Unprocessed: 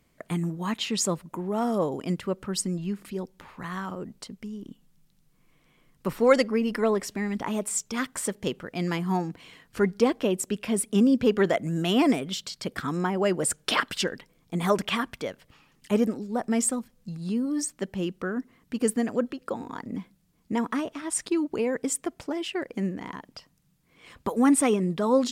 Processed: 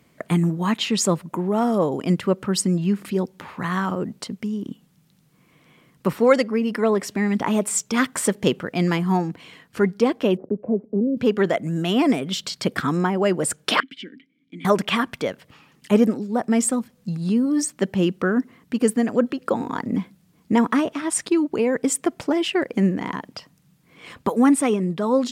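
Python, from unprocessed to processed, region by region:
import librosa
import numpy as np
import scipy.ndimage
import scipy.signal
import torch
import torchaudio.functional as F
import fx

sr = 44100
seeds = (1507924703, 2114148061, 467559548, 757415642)

y = fx.chain(x, sr, fx.block_float(bits=5),
    fx.ladder_lowpass(hz=650.0, resonance_pct=45),
    fx.band_squash(depth_pct=40), at=(10.37, 11.17))
y = fx.chain(y, sr, fx.vowel_filter(vowel='i'),
    fx.peak_eq(hz=560.0, db=-7.0, octaves=0.39),
    fx.band_squash(depth_pct=40), at=(13.8, 14.65))
y = scipy.signal.sosfilt(scipy.signal.butter(2, 110.0, 'highpass', fs=sr, output='sos'), y)
y = fx.bass_treble(y, sr, bass_db=2, treble_db=-3)
y = fx.rider(y, sr, range_db=4, speed_s=0.5)
y = y * 10.0 ** (5.5 / 20.0)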